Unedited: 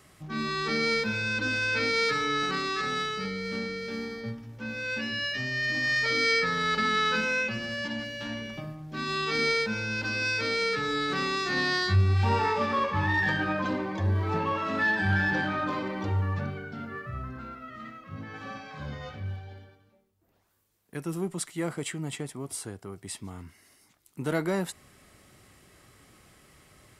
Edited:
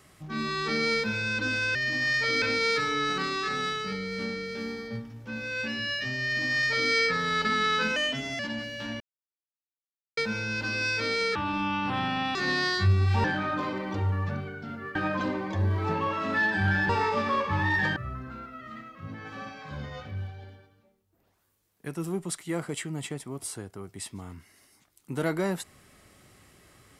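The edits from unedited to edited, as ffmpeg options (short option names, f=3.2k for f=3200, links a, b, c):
-filter_complex "[0:a]asplit=13[a][b][c][d][e][f][g][h][i][j][k][l][m];[a]atrim=end=1.752[n];[b]atrim=start=5.568:end=6.242[o];[c]atrim=start=1.748:end=7.294[p];[d]atrim=start=7.29:end=7.8,asetpts=PTS-STARTPTS,asetrate=52038,aresample=44100,atrim=end_sample=19060,asetpts=PTS-STARTPTS[q];[e]atrim=start=7.796:end=8.41,asetpts=PTS-STARTPTS,afade=t=out:st=0.61:d=0.004:c=hsin[r];[f]atrim=start=8.41:end=9.58,asetpts=PTS-STARTPTS,volume=0[s];[g]atrim=start=9.58:end=10.764,asetpts=PTS-STARTPTS,afade=t=in:d=0.004:c=hsin[t];[h]atrim=start=10.76:end=11.44,asetpts=PTS-STARTPTS,asetrate=29988,aresample=44100[u];[i]atrim=start=11.436:end=12.332[v];[j]atrim=start=15.338:end=17.052[w];[k]atrim=start=13.398:end=15.342[x];[l]atrim=start=12.328:end=13.402[y];[m]atrim=start=17.048[z];[n][o]acrossfade=d=0.004:c1=hsin:c2=hsin[aa];[aa][p]acrossfade=d=0.004:c1=hsin:c2=hsin[ab];[ab][q]acrossfade=d=0.004:c1=hsin:c2=hsin[ac];[r][s][t]concat=n=3:v=0:a=1[ad];[ac][ad]acrossfade=d=0.004:c1=hsin:c2=hsin[ae];[ae][u]acrossfade=d=0.004:c1=hsin:c2=hsin[af];[af][v]acrossfade=d=0.004:c1=hsin:c2=hsin[ag];[ag][w]acrossfade=d=0.004:c1=hsin:c2=hsin[ah];[ah][x]acrossfade=d=0.004:c1=hsin:c2=hsin[ai];[ai][y]acrossfade=d=0.004:c1=hsin:c2=hsin[aj];[aj][z]acrossfade=d=0.004:c1=hsin:c2=hsin"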